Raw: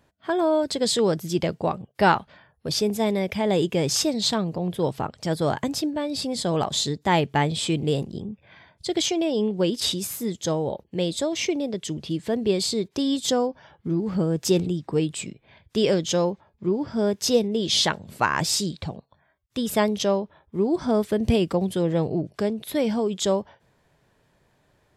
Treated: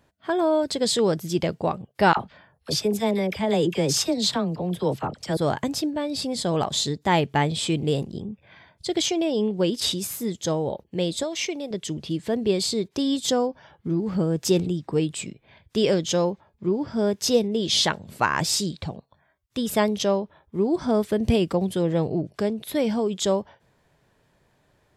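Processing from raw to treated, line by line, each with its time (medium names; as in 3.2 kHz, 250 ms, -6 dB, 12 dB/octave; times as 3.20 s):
2.13–5.37 s: phase dispersion lows, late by 40 ms, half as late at 960 Hz
11.23–11.71 s: bass shelf 400 Hz -10 dB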